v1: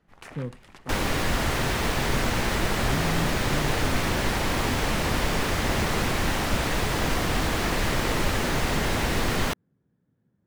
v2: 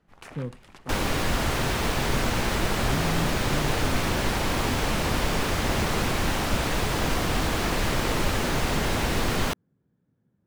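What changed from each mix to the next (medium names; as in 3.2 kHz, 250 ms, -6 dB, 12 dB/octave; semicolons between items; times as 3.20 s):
master: add peaking EQ 1.9 kHz -2.5 dB 0.34 oct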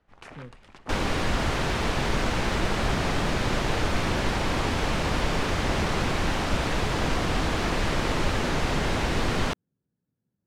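speech -10.5 dB; master: add distance through air 54 m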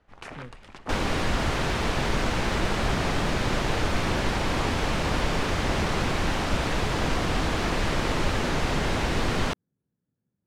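first sound +4.5 dB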